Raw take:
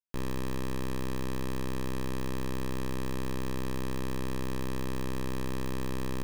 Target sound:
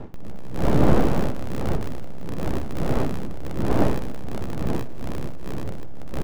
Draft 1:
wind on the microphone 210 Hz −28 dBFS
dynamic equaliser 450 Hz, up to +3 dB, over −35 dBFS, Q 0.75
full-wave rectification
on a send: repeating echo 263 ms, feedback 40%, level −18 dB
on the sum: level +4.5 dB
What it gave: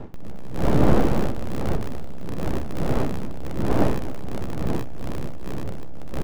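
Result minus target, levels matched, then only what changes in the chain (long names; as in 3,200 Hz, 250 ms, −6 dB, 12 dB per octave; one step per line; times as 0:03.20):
echo 101 ms late
change: repeating echo 162 ms, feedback 40%, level −18 dB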